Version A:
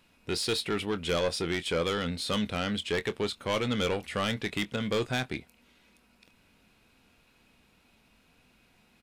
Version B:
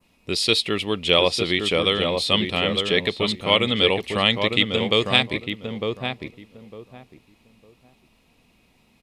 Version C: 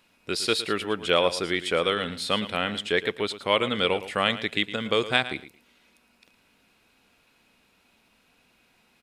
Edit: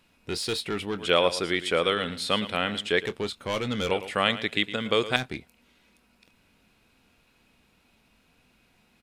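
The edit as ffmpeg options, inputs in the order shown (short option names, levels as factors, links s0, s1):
-filter_complex "[2:a]asplit=2[s0][s1];[0:a]asplit=3[s2][s3][s4];[s2]atrim=end=0.982[s5];[s0]atrim=start=0.978:end=3.062[s6];[s3]atrim=start=3.058:end=3.912[s7];[s1]atrim=start=3.908:end=5.162[s8];[s4]atrim=start=5.158[s9];[s5][s6]acrossfade=d=0.004:c1=hsin:c2=hsin[s10];[s10][s7]acrossfade=d=0.004:c1=hsin:c2=hsin[s11];[s11][s8]acrossfade=d=0.004:c1=hsin:c2=hsin[s12];[s12][s9]acrossfade=d=0.004:c1=hsin:c2=hsin"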